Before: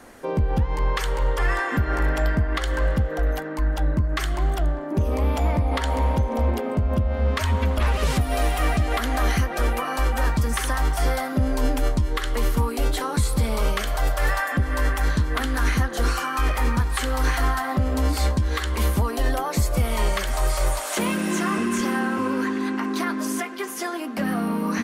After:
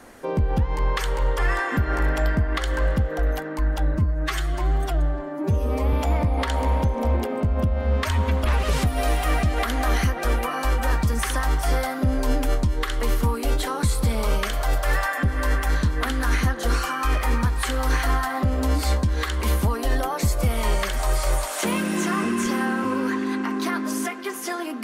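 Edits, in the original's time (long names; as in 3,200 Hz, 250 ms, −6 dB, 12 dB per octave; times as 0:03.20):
0:03.95–0:05.27: time-stretch 1.5×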